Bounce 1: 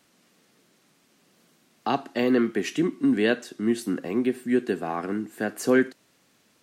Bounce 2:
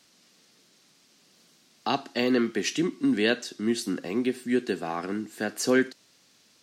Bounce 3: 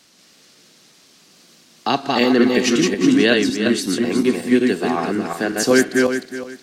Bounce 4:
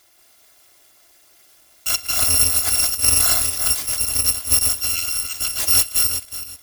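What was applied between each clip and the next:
parametric band 4,900 Hz +10.5 dB 1.5 octaves; level −2.5 dB
feedback delay that plays each chunk backwards 184 ms, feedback 48%, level −2 dB; level +7.5 dB
samples in bit-reversed order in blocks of 256 samples; level −2 dB

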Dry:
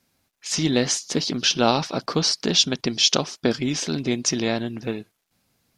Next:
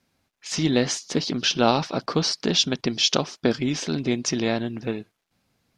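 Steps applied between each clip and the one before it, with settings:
high-shelf EQ 7,100 Hz −11 dB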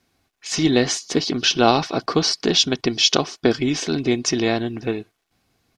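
comb filter 2.7 ms, depth 36%
level +3.5 dB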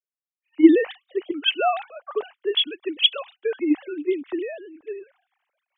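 three sine waves on the formant tracks
reversed playback
upward compression, threshold −23 dBFS
reversed playback
multiband upward and downward expander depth 100%
level −6.5 dB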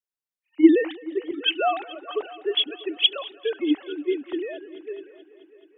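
echo machine with several playback heads 215 ms, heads all three, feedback 46%, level −22 dB
level −1.5 dB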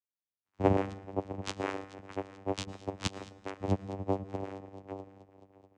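lower of the sound and its delayed copy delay 7.7 ms
channel vocoder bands 4, saw 97 Hz
on a send at −20.5 dB: convolution reverb RT60 0.75 s, pre-delay 105 ms
on the sum: level −6.5 dB

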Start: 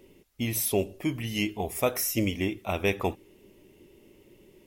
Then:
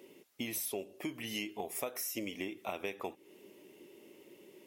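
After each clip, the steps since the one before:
high-pass filter 270 Hz 12 dB per octave
downward compressor 6 to 1, threshold −37 dBFS, peak gain reduction 16 dB
level +1 dB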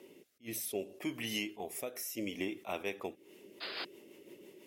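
sound drawn into the spectrogram noise, 0:03.60–0:03.85, 360–5,100 Hz −42 dBFS
rotating-speaker cabinet horn 0.65 Hz, later 6 Hz, at 0:02.89
level that may rise only so fast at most 320 dB per second
level +3.5 dB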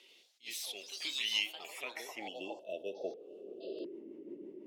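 band-pass filter sweep 3,700 Hz → 290 Hz, 0:01.38–0:04.04
time-frequency box erased 0:02.27–0:03.85, 680–2,600 Hz
delay with pitch and tempo change per echo 86 ms, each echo +4 semitones, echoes 3, each echo −6 dB
level +10.5 dB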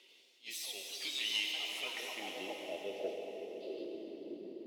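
on a send at −1.5 dB: convolution reverb RT60 4.2 s, pre-delay 71 ms
on the sum: soft clipping −23 dBFS, distortion −23 dB
level −1.5 dB

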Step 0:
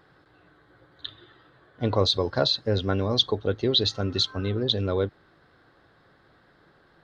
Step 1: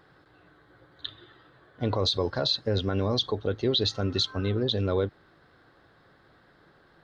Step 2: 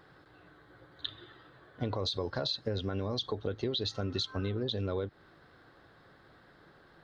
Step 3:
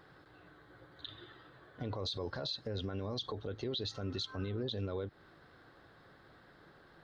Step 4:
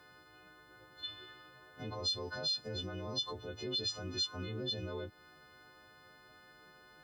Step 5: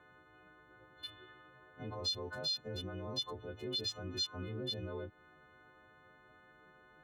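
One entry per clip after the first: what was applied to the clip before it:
brickwall limiter −15.5 dBFS, peak gain reduction 7.5 dB
downward compressor 6 to 1, threshold −30 dBFS, peak gain reduction 9 dB
brickwall limiter −28 dBFS, peak gain reduction 10 dB; level −1 dB
every partial snapped to a pitch grid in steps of 3 semitones; level −2.5 dB
adaptive Wiener filter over 9 samples; level −1 dB

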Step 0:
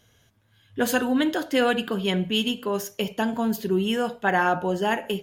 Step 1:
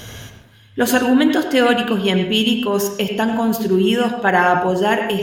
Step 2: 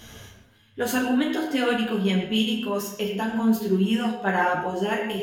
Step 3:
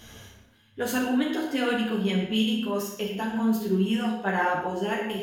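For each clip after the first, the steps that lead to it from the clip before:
reversed playback; upward compression, threshold −24 dBFS; reversed playback; convolution reverb RT60 0.45 s, pre-delay 87 ms, DRR 6 dB; level +6.5 dB
flutter between parallel walls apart 5.4 metres, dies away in 0.3 s; string-ensemble chorus; level −6.5 dB
flutter between parallel walls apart 10.2 metres, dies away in 0.37 s; level −3 dB

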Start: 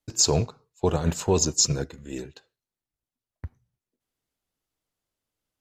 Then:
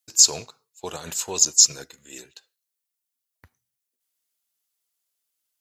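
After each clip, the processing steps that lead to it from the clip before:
spectral tilt +4.5 dB per octave
level −5 dB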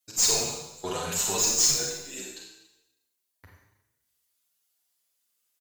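tube saturation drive 21 dB, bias 0.35
four-comb reverb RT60 0.93 s, combs from 31 ms, DRR −1.5 dB
barber-pole flanger 7.3 ms +0.83 Hz
level +4 dB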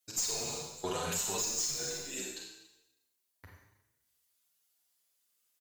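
downward compressor 8 to 1, threshold −30 dBFS, peak gain reduction 12.5 dB
level −1 dB

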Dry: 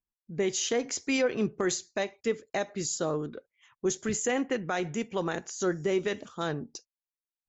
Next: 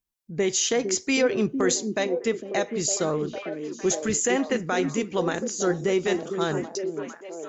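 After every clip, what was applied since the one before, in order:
high-shelf EQ 4,600 Hz +4.5 dB
on a send: echo through a band-pass that steps 455 ms, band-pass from 280 Hz, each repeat 0.7 octaves, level −3 dB
on the sum: level +4 dB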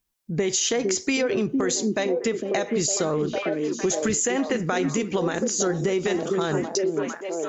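brickwall limiter −18.5 dBFS, peak gain reduction 7.5 dB
downward compressor, threshold −28 dBFS, peak gain reduction 6.5 dB
level +8 dB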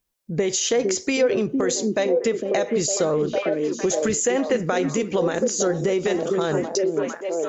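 parametric band 530 Hz +6.5 dB 0.56 octaves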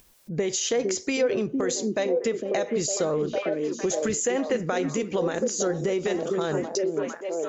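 upward compression, threshold −35 dBFS
level −4 dB

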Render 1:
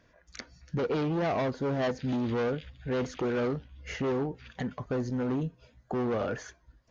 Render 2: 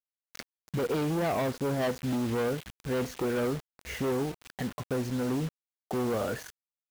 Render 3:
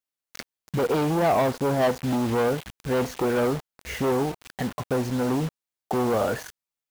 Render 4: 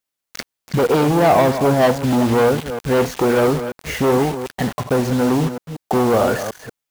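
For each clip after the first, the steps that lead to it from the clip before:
bit reduction 7 bits
dynamic equaliser 820 Hz, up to +6 dB, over −45 dBFS, Q 1.4; level +4.5 dB
delay that plays each chunk backwards 186 ms, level −10 dB; level +7.5 dB

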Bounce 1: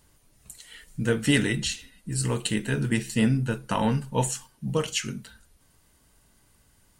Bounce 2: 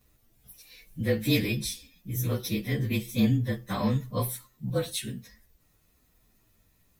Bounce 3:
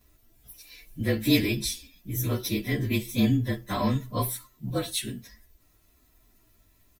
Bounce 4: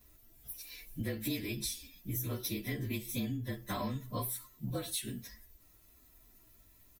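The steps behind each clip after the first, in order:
partials spread apart or drawn together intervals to 111%; parametric band 1,100 Hz −3.5 dB 1.2 octaves
comb filter 3 ms, depth 47%; level +2 dB
high-shelf EQ 9,500 Hz +7.5 dB; downward compressor 6 to 1, threshold −32 dBFS, peak gain reduction 15.5 dB; level −2 dB

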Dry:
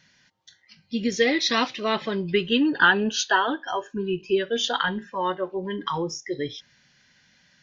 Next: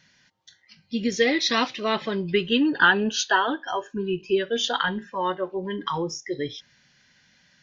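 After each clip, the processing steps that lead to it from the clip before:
no processing that can be heard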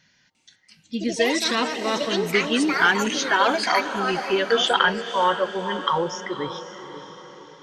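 gain on a spectral selection 0:03.41–0:06.27, 450–3,500 Hz +7 dB
delay with pitch and tempo change per echo 349 ms, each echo +6 semitones, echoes 2, each echo −6 dB
feedback delay with all-pass diffusion 525 ms, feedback 49%, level −11 dB
level −1 dB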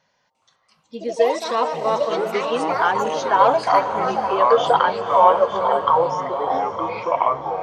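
delay with pitch and tempo change per echo 418 ms, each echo −6 semitones, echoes 3, each echo −6 dB
flat-topped bell 730 Hz +15.5 dB
level −8.5 dB

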